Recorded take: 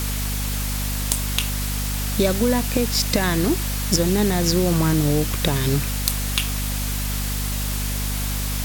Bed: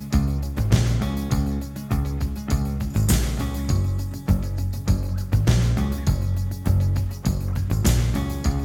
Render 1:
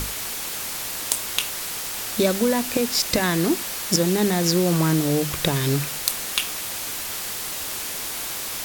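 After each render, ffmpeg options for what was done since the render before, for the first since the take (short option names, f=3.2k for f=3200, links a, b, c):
-af "bandreject=f=50:t=h:w=6,bandreject=f=100:t=h:w=6,bandreject=f=150:t=h:w=6,bandreject=f=200:t=h:w=6,bandreject=f=250:t=h:w=6"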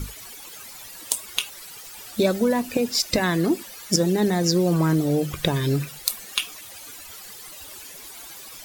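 -af "afftdn=nr=15:nf=-30"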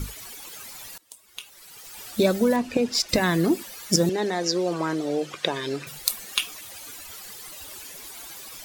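-filter_complex "[0:a]asettb=1/sr,asplit=3[a][b][c];[a]atrim=end=2.564[d];[b]atrim=start=2.56:end=3.09,asetpts=PTS-STARTPTS,afade=t=in:d=0.004:c=qsin,afade=t=out:st=0.526:d=0.004:c=qsin,adynamicsmooth=sensitivity=3:basefreq=5.9k[e];[c]atrim=start=3.086[f];[d][e]acrossfade=d=0.004:c1=hsin:c2=qsin[g];[g][f]acrossfade=d=0.004:c1=qsin:c2=hsin,asettb=1/sr,asplit=3[h][i][j];[h]atrim=end=4.094[k];[i]atrim=start=4.09:end=5.87,asetpts=PTS-STARTPTS,afade=t=in:d=0.004:c=qsin,afade=t=out:st=1.776:d=0.004:c=qsin,highpass=380,lowpass=6.1k[l];[j]atrim=start=5.866[m];[k][l]acrossfade=d=0.004:c1=hsin:c2=qsin[n];[n][m]acrossfade=d=0.004:c1=qsin:c2=hsin,asplit=2[o][p];[o]atrim=end=0.98,asetpts=PTS-STARTPTS,afade=t=out:st=0.976:d=0.004:c=hsin:silence=0.0668344[q];[p]atrim=start=0.98,asetpts=PTS-STARTPTS,afade=t=in:d=1.03:c=qua:silence=0.0668344[r];[q][r]concat=n=2:v=0:a=1"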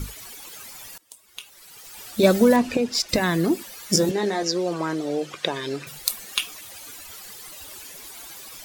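-filter_complex "[0:a]asettb=1/sr,asplit=3[a][b][c];[a]atrim=end=0.694[d];[b]atrim=start=0.69:end=1.09,asetpts=PTS-STARTPTS,afade=t=in:d=0.004:c=qsin,afade=t=out:st=0.396:d=0.004:c=qsin,bandreject=f=4k:w=12[e];[c]atrim=start=1.086[f];[d][e]acrossfade=d=0.004:c1=hsin:c2=qsin[g];[g][f]acrossfade=d=0.004:c1=qsin:c2=hsin,asettb=1/sr,asplit=3[h][i][j];[h]atrim=end=2.234[k];[i]atrim=start=2.23:end=2.76,asetpts=PTS-STARTPTS,afade=t=in:d=0.004:c=qsin,afade=t=out:st=0.526:d=0.004:c=qsin,acontrast=31[l];[j]atrim=start=2.756[m];[k][l]acrossfade=d=0.004:c1=hsin:c2=qsin[n];[n][m]acrossfade=d=0.004:c1=qsin:c2=hsin,asettb=1/sr,asplit=3[o][p][q];[o]atrim=end=3.884[r];[p]atrim=start=3.88:end=4.43,asetpts=PTS-STARTPTS,afade=t=in:d=0.004:c=qsin,afade=t=out:st=0.546:d=0.004:c=qsin,asplit=2[s][t];[t]adelay=20,volume=-4.5dB[u];[s][u]amix=inputs=2:normalize=0,atrim=end_sample=24255[v];[q]atrim=start=4.426[w];[r][v]acrossfade=d=0.004:c1=hsin:c2=qsin[x];[x][w]acrossfade=d=0.004:c1=qsin:c2=hsin"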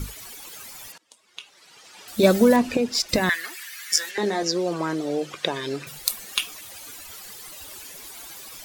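-filter_complex "[0:a]asettb=1/sr,asplit=3[a][b][c];[a]atrim=end=0.924[d];[b]atrim=start=0.92:end=2.08,asetpts=PTS-STARTPTS,afade=t=in:d=0.004:c=qsin,afade=t=out:st=1.156:d=0.004:c=qsin,highpass=170,lowpass=5.7k[e];[c]atrim=start=2.076[f];[d][e]acrossfade=d=0.004:c1=hsin:c2=qsin[g];[g][f]acrossfade=d=0.004:c1=qsin:c2=hsin,asettb=1/sr,asplit=3[h][i][j];[h]atrim=end=3.294[k];[i]atrim=start=3.29:end=4.18,asetpts=PTS-STARTPTS,afade=t=in:d=0.004:c=qsin,afade=t=out:st=0.886:d=0.004:c=qsin,highpass=f=1.8k:t=q:w=3.2[l];[j]atrim=start=4.176[m];[k][l]acrossfade=d=0.004:c1=hsin:c2=qsin[n];[n][m]acrossfade=d=0.004:c1=qsin:c2=hsin"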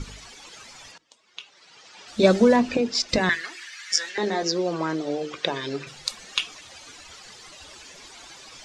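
-af "lowpass=f=6.7k:w=0.5412,lowpass=f=6.7k:w=1.3066,bandreject=f=50:t=h:w=6,bandreject=f=100:t=h:w=6,bandreject=f=150:t=h:w=6,bandreject=f=200:t=h:w=6,bandreject=f=250:t=h:w=6,bandreject=f=300:t=h:w=6,bandreject=f=350:t=h:w=6,bandreject=f=400:t=h:w=6,bandreject=f=450:t=h:w=6"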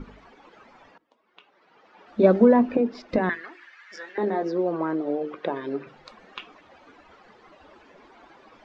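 -af "lowpass=1.3k,lowshelf=f=170:t=q:w=1.5:g=-7"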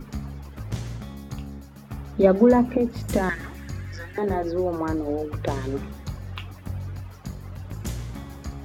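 -filter_complex "[1:a]volume=-12.5dB[a];[0:a][a]amix=inputs=2:normalize=0"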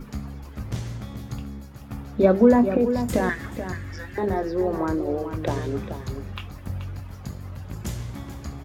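-filter_complex "[0:a]asplit=2[a][b];[b]adelay=25,volume=-13.5dB[c];[a][c]amix=inputs=2:normalize=0,asplit=2[d][e];[e]adelay=431.5,volume=-9dB,highshelf=f=4k:g=-9.71[f];[d][f]amix=inputs=2:normalize=0"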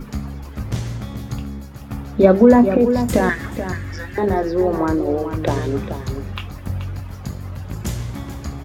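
-af "volume=6dB,alimiter=limit=-1dB:level=0:latency=1"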